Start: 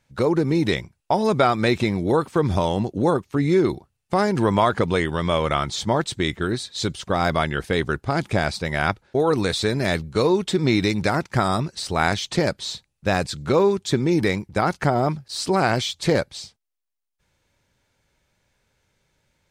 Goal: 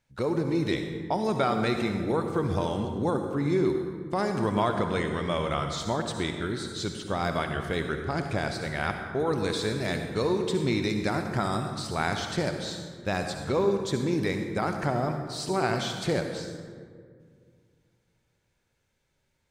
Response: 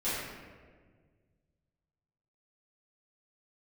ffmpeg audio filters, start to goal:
-filter_complex "[0:a]asplit=2[a][b];[b]highshelf=f=7.8k:g=10[c];[1:a]atrim=start_sample=2205,asetrate=33075,aresample=44100,adelay=55[d];[c][d]afir=irnorm=-1:irlink=0,volume=-15.5dB[e];[a][e]amix=inputs=2:normalize=0,volume=-8dB"

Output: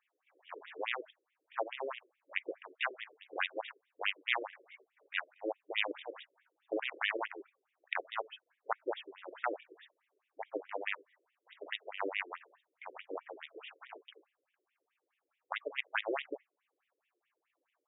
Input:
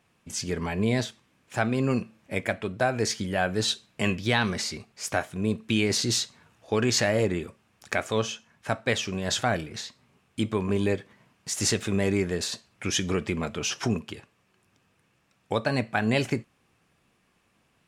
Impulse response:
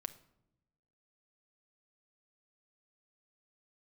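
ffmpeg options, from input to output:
-af "aeval=exprs='0.422*(cos(1*acos(clip(val(0)/0.422,-1,1)))-cos(1*PI/2))+0.0188*(cos(4*acos(clip(val(0)/0.422,-1,1)))-cos(4*PI/2))+0.0841*(cos(7*acos(clip(val(0)/0.422,-1,1)))-cos(7*PI/2))':c=same,afftfilt=real='re*between(b*sr/1024,390*pow(2700/390,0.5+0.5*sin(2*PI*4.7*pts/sr))/1.41,390*pow(2700/390,0.5+0.5*sin(2*PI*4.7*pts/sr))*1.41)':imag='im*between(b*sr/1024,390*pow(2700/390,0.5+0.5*sin(2*PI*4.7*pts/sr))/1.41,390*pow(2700/390,0.5+0.5*sin(2*PI*4.7*pts/sr))*1.41)':win_size=1024:overlap=0.75"

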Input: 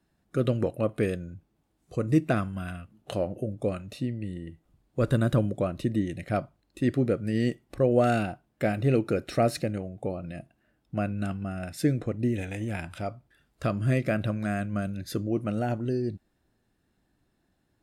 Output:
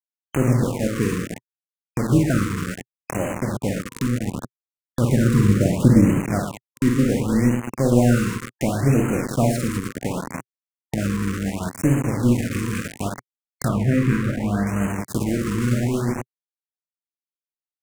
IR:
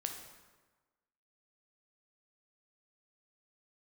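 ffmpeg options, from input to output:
-filter_complex "[0:a]asettb=1/sr,asplit=3[a][b][c];[a]atrim=end=5.434[d];[b]atrim=start=5.43:end=6.18,asetpts=PTS-STARTPTS,afade=t=in:d=0.004:c=qsin,afade=t=out:st=0.746:d=0.004:c=qsin,lowshelf=f=330:g=9.5[e];[c]atrim=start=6.176[f];[d][e]acrossfade=d=0.004:c1=hsin:c2=qsin[g];[g][f]acrossfade=d=0.004:c1=qsin:c2=hsin,aecho=1:1:50|115|199.5|309.4|452.2:0.631|0.398|0.251|0.158|0.1,acrusher=bits=4:mix=0:aa=0.000001,asettb=1/sr,asplit=3[h][i][j];[h]atrim=end=13.684[k];[i]atrim=start=13.68:end=14.67,asetpts=PTS-STARTPTS,afade=t=in:d=0.004:c=qsin,afade=t=out:st=0.986:d=0.004:c=qsin,acrossover=split=3100[l][m];[m]acompressor=threshold=-42dB:ratio=4:attack=1:release=60[n];[l][n]amix=inputs=2:normalize=0[o];[j]atrim=start=14.666[p];[k][o]acrossfade=d=0.004:c1=hsin:c2=qsin[q];[q][p]acrossfade=d=0.004:c1=qsin:c2=hsin,equalizer=f=125:t=o:w=1:g=9,equalizer=f=250:t=o:w=1:g=10,equalizer=f=1k:t=o:w=1:g=7,equalizer=f=2k:t=o:w=1:g=6,equalizer=f=4k:t=o:w=1:g=-4,equalizer=f=8k:t=o:w=1:g=8,tremolo=f=260:d=0.519,acompressor=mode=upward:threshold=-18dB:ratio=2.5,afftfilt=real='re*(1-between(b*sr/1024,670*pow(4400/670,0.5+0.5*sin(2*PI*0.69*pts/sr))/1.41,670*pow(4400/670,0.5+0.5*sin(2*PI*0.69*pts/sr))*1.41))':imag='im*(1-between(b*sr/1024,670*pow(4400/670,0.5+0.5*sin(2*PI*0.69*pts/sr))/1.41,670*pow(4400/670,0.5+0.5*sin(2*PI*0.69*pts/sr))*1.41))':win_size=1024:overlap=0.75,volume=-2.5dB"

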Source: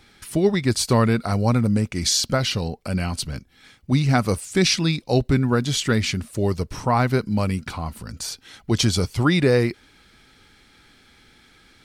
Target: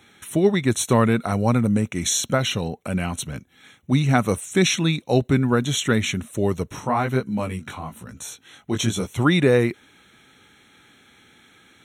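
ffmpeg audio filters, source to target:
-filter_complex "[0:a]highpass=110,asplit=3[a][b][c];[a]afade=t=out:st=6.79:d=0.02[d];[b]flanger=delay=15:depth=6.6:speed=1.1,afade=t=in:st=6.79:d=0.02,afade=t=out:st=9.06:d=0.02[e];[c]afade=t=in:st=9.06:d=0.02[f];[d][e][f]amix=inputs=3:normalize=0,asuperstop=centerf=4800:order=8:qfactor=3.2,volume=1dB"

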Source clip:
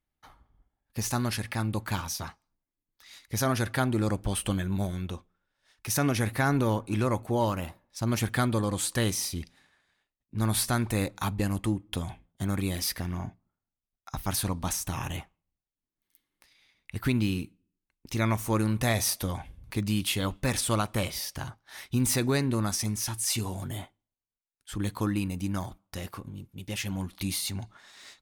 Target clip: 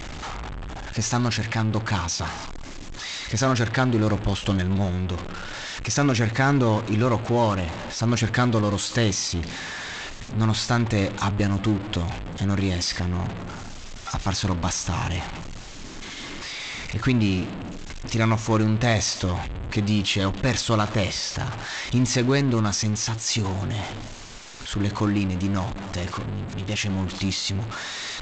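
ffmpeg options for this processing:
-af "aeval=exprs='val(0)+0.5*0.0282*sgn(val(0))':c=same,volume=4dB" -ar 16000 -c:a g722

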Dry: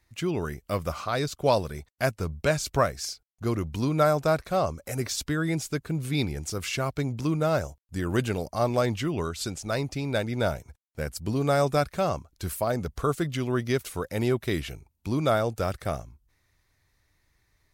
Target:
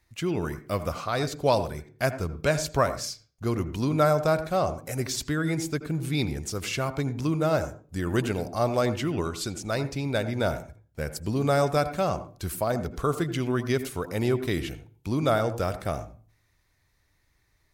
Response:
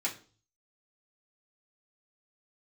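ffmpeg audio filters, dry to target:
-filter_complex "[0:a]asplit=2[a][b];[b]lowpass=f=1.1k:p=1[c];[1:a]atrim=start_sample=2205,adelay=79[d];[c][d]afir=irnorm=-1:irlink=0,volume=-12.5dB[e];[a][e]amix=inputs=2:normalize=0"

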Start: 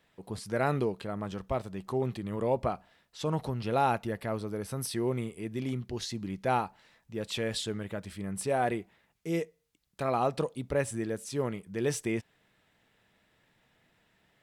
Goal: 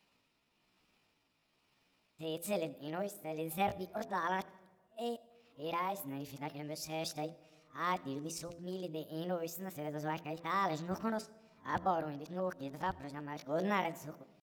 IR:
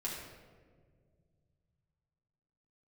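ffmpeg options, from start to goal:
-filter_complex "[0:a]areverse,tremolo=f=1.1:d=0.42,bandreject=f=60:t=h:w=6,bandreject=f=120:t=h:w=6,bandreject=f=180:t=h:w=6,bandreject=f=240:t=h:w=6,bandreject=f=300:t=h:w=6,bandreject=f=360:t=h:w=6,bandreject=f=420:t=h:w=6,bandreject=f=480:t=h:w=6,asetrate=62367,aresample=44100,atempo=0.707107,asplit=2[a][b];[1:a]atrim=start_sample=2205,adelay=82[c];[b][c]afir=irnorm=-1:irlink=0,volume=-22.5dB[d];[a][d]amix=inputs=2:normalize=0,volume=-4dB"

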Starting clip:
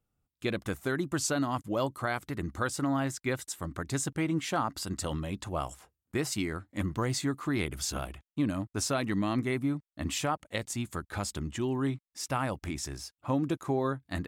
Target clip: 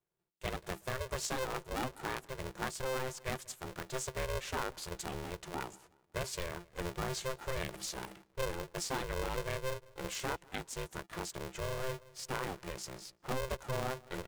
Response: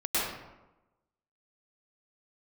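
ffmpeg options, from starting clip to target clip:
-filter_complex "[0:a]highpass=f=68:w=0.5412,highpass=f=68:w=1.3066,asetrate=41625,aresample=44100,atempo=1.05946,asplit=2[a][b];[b]adelay=185,lowpass=f=1.6k:p=1,volume=-23dB,asplit=2[c][d];[d]adelay=185,lowpass=f=1.6k:p=1,volume=0.48,asplit=2[e][f];[f]adelay=185,lowpass=f=1.6k:p=1,volume=0.48[g];[a][c][e][g]amix=inputs=4:normalize=0,aeval=exprs='val(0)*sgn(sin(2*PI*260*n/s))':c=same,volume=-7dB"

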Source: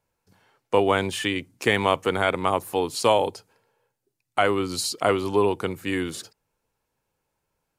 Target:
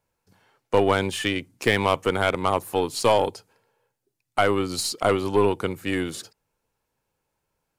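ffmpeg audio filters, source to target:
-af "aeval=exprs='0.501*(cos(1*acos(clip(val(0)/0.501,-1,1)))-cos(1*PI/2))+0.0355*(cos(4*acos(clip(val(0)/0.501,-1,1)))-cos(4*PI/2))+0.0447*(cos(5*acos(clip(val(0)/0.501,-1,1)))-cos(5*PI/2))+0.0355*(cos(7*acos(clip(val(0)/0.501,-1,1)))-cos(7*PI/2))+0.00316*(cos(8*acos(clip(val(0)/0.501,-1,1)))-cos(8*PI/2))':c=same,aeval=exprs='0.841*sin(PI/2*1.41*val(0)/0.841)':c=same,volume=-6.5dB"

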